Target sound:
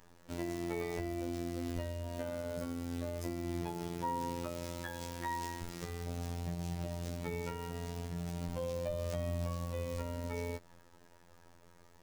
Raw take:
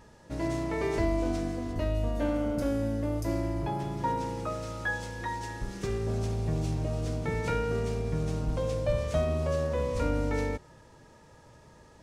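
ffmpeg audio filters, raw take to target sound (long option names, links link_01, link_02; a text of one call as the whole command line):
ffmpeg -i in.wav -af "acrusher=bits=8:dc=4:mix=0:aa=0.000001,alimiter=level_in=1.5dB:limit=-24dB:level=0:latency=1:release=152,volume=-1.5dB,afftfilt=real='hypot(re,im)*cos(PI*b)':imag='0':win_size=2048:overlap=0.75" out.wav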